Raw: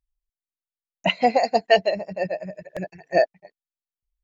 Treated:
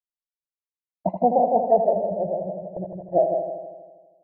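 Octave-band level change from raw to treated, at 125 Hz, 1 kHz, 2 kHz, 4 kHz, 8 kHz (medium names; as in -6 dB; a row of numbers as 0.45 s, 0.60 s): +1.5 dB, +1.0 dB, under -35 dB, under -40 dB, no reading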